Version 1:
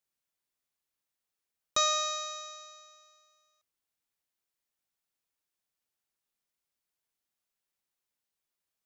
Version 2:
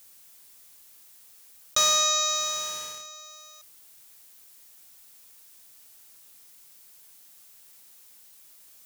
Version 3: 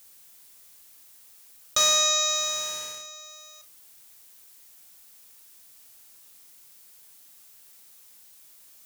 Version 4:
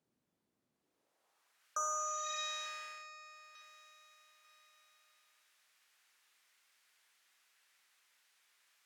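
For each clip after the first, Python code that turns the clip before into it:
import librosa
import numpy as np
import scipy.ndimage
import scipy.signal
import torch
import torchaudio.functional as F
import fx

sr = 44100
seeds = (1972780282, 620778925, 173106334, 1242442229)

y1 = fx.high_shelf(x, sr, hz=4900.0, db=12.0)
y1 = fx.leveller(y1, sr, passes=2)
y1 = fx.env_flatten(y1, sr, amount_pct=50)
y1 = F.gain(torch.from_numpy(y1), -4.5).numpy()
y2 = fx.doubler(y1, sr, ms=41.0, db=-10.5)
y3 = fx.echo_feedback(y2, sr, ms=894, feedback_pct=37, wet_db=-18.5)
y3 = fx.filter_sweep_bandpass(y3, sr, from_hz=220.0, to_hz=1800.0, start_s=0.71, end_s=1.68, q=1.3)
y3 = fx.spec_repair(y3, sr, seeds[0], start_s=1.75, length_s=0.61, low_hz=1600.0, high_hz=5500.0, source='both')
y3 = F.gain(torch.from_numpy(y3), -4.0).numpy()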